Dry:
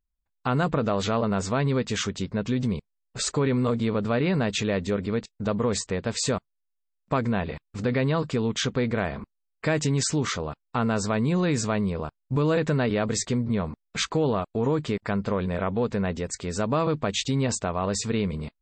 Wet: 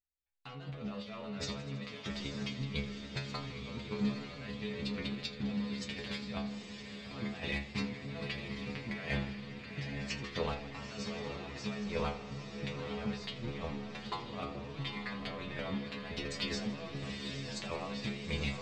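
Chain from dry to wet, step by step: band shelf 3100 Hz +13 dB; sample leveller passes 3; transient shaper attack +1 dB, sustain -4 dB; negative-ratio compressor -20 dBFS, ratio -0.5; air absorption 97 m; metallic resonator 68 Hz, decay 0.51 s, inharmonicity 0.002; diffused feedback echo 0.883 s, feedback 51%, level -6 dB; warbling echo 81 ms, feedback 74%, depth 69 cents, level -17 dB; gain -8 dB

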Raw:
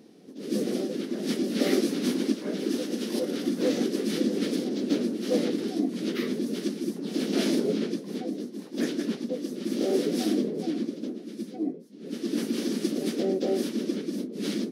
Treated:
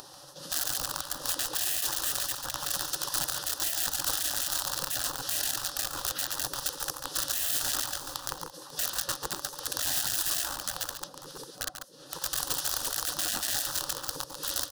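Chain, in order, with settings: 1.34–2 high shelf 10000 Hz -11.5 dB; wrapped overs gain 22.5 dB; fixed phaser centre 440 Hz, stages 8; upward compressor, threshold -30 dBFS; tapped delay 0.141/0.544 s -8.5/-17.5 dB; spectral gate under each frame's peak -15 dB weak; gain +5.5 dB

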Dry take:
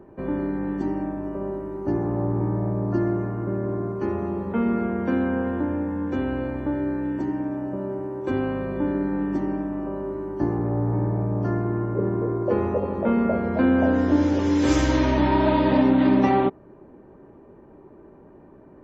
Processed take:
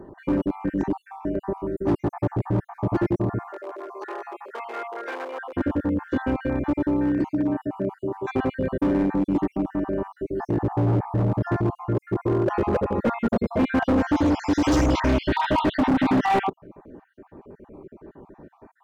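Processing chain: random spectral dropouts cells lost 49%; overloaded stage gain 21.5 dB; 3.49–5.53 Bessel high-pass 730 Hz, order 8; gain +5 dB

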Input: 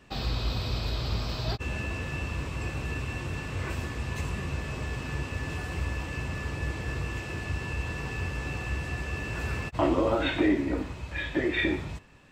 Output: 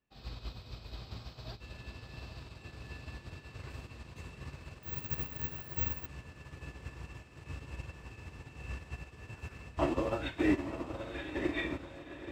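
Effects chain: diffused feedback echo 0.927 s, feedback 71%, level -3.5 dB; 4.83–6.06 careless resampling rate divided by 2×, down none, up zero stuff; upward expander 2.5:1, over -38 dBFS; gain -3.5 dB

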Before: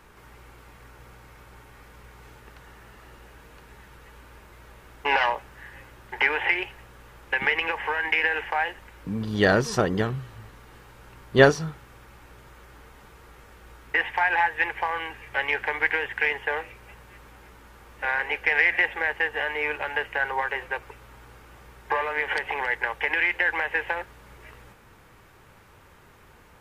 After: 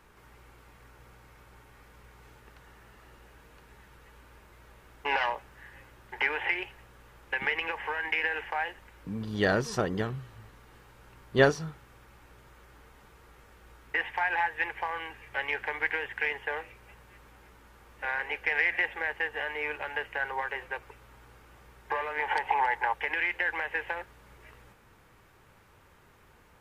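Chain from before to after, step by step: 22.19–22.94 bell 870 Hz +14 dB 0.48 oct; gain -6 dB

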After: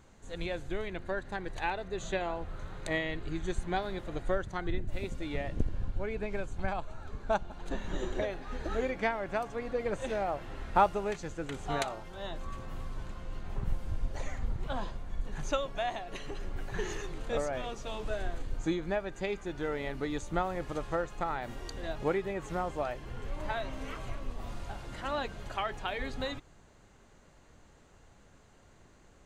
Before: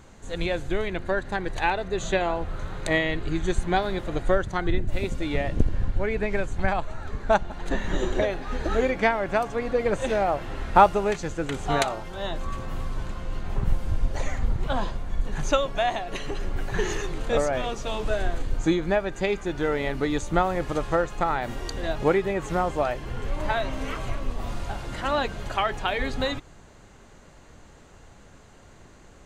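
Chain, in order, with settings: 5.72–7.96 bell 1900 Hz -8 dB 0.22 oct; gain -9 dB

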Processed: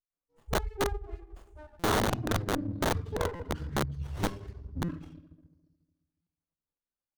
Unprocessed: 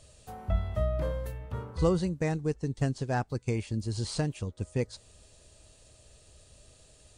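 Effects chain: per-bin expansion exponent 3; de-hum 57.19 Hz, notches 18; dispersion highs, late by 0.103 s, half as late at 1700 Hz; reverb RT60 1.6 s, pre-delay 4 ms, DRR -8 dB; pitch shift -7.5 st; reverb removal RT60 0.72 s; wrapped overs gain 22.5 dB; high shelf 5200 Hz +6 dB; stuck buffer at 1.79/3.35/4.84/6.22, samples 256, times 7; running maximum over 17 samples; gain -1.5 dB

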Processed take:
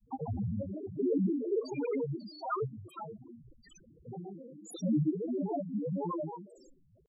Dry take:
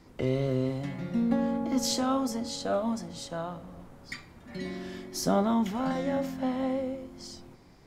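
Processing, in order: loudest bins only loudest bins 2; grains 0.1 s, grains 20/s, spray 0.1 s, pitch spread up and down by 12 st; varispeed +11%

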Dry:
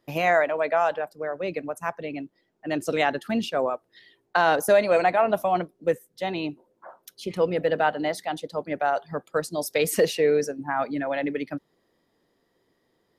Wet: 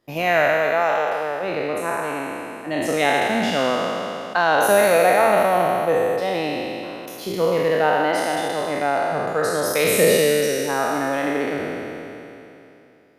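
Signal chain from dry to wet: spectral trails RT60 2.96 s

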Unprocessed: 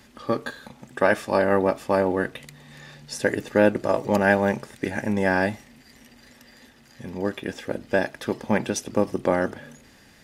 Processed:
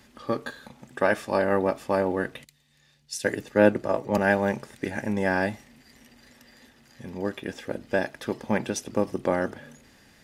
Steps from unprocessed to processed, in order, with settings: 2.44–4.18 three-band expander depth 70%; gain -3 dB

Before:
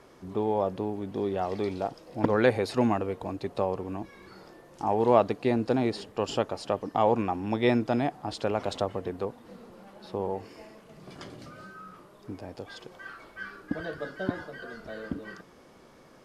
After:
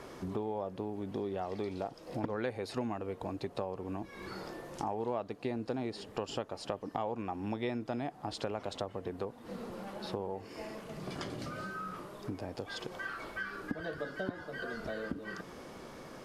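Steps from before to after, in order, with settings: compressor 4:1, threshold -43 dBFS, peak gain reduction 23 dB; gain +6.5 dB

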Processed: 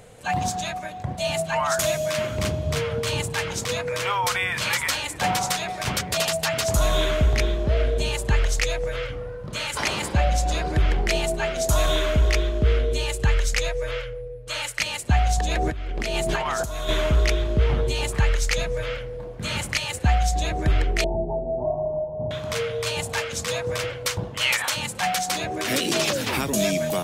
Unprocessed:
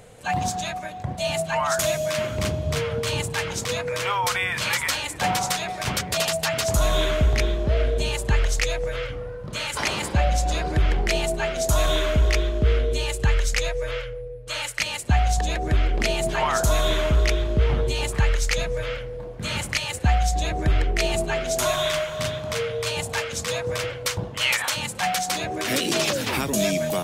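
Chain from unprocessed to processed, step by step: 15.51–16.89 negative-ratio compressor -26 dBFS, ratio -1; 21.04–22.31 Chebyshev low-pass 890 Hz, order 6

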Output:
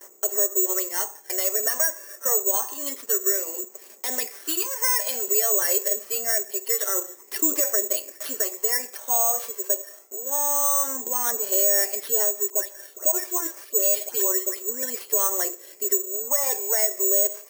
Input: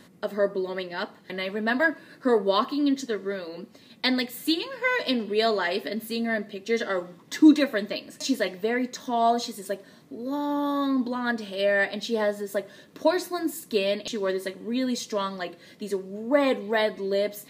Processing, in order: median filter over 9 samples; Chebyshev high-pass 380 Hz, order 4; comb 5.1 ms, depth 46%; compressor 4:1, threshold -27 dBFS, peak gain reduction 11.5 dB; 12.5–14.83 dispersion highs, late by 0.134 s, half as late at 2100 Hz; phaser 0.26 Hz, delay 1.9 ms, feedback 39%; limiter -23 dBFS, peak gain reduction 8 dB; high shelf 3700 Hz -4 dB; careless resampling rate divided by 6×, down filtered, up zero stuff; gate -52 dBFS, range -22 dB; gain +2 dB

